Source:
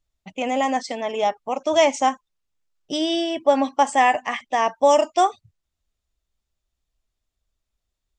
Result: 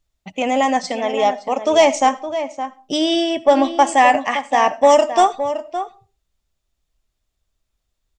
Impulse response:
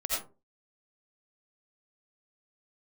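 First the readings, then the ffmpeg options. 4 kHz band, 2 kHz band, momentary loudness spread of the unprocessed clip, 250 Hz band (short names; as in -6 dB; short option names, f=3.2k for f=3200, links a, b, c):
+4.5 dB, +4.5 dB, 10 LU, +5.0 dB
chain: -filter_complex "[0:a]asoftclip=type=tanh:threshold=-6dB,asplit=2[a][b];[b]adelay=565.6,volume=-10dB,highshelf=f=4k:g=-12.7[c];[a][c]amix=inputs=2:normalize=0,asplit=2[d][e];[1:a]atrim=start_sample=2205[f];[e][f]afir=irnorm=-1:irlink=0,volume=-24.5dB[g];[d][g]amix=inputs=2:normalize=0,volume=4.5dB"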